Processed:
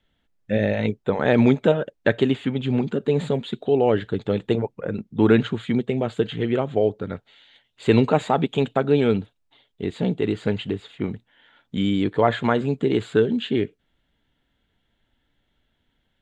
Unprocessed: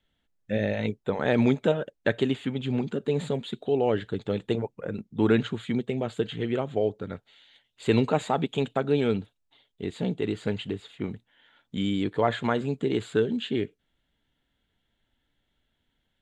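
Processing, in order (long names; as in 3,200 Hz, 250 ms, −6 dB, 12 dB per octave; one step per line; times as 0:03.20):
high-shelf EQ 5,800 Hz −9 dB
level +5.5 dB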